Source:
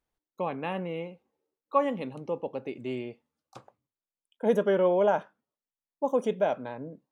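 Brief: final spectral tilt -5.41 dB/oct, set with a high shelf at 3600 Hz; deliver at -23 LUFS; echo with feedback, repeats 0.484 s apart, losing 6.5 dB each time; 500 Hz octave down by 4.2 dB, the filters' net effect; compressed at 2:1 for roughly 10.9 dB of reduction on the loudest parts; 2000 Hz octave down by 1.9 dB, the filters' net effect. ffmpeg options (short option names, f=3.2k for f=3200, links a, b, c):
-af "equalizer=f=500:t=o:g=-5,equalizer=f=2k:t=o:g=-4,highshelf=f=3.6k:g=6,acompressor=threshold=-42dB:ratio=2,aecho=1:1:484|968|1452|1936|2420|2904:0.473|0.222|0.105|0.0491|0.0231|0.0109,volume=18.5dB"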